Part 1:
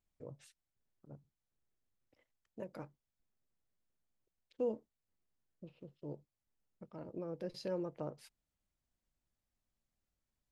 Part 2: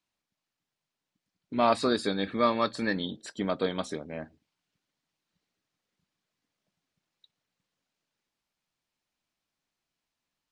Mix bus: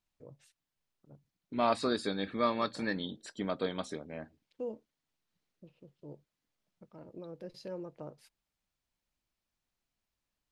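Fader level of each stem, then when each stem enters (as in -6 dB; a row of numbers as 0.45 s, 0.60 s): -3.0 dB, -5.0 dB; 0.00 s, 0.00 s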